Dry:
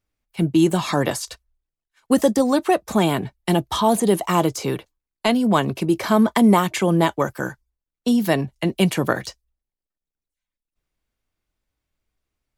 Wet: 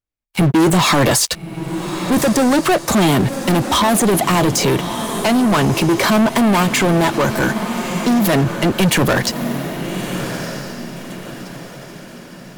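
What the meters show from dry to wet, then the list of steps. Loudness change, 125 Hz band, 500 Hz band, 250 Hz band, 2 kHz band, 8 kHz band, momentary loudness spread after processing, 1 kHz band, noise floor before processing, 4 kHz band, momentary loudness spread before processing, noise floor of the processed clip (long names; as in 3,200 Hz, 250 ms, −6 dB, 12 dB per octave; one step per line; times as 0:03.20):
+4.0 dB, +7.0 dB, +3.5 dB, +4.0 dB, +9.0 dB, +11.0 dB, 16 LU, +5.0 dB, below −85 dBFS, +9.0 dB, 10 LU, −37 dBFS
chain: leveller curve on the samples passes 5
feedback delay with all-pass diffusion 1,258 ms, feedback 41%, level −12 dB
boost into a limiter +7.5 dB
level −8.5 dB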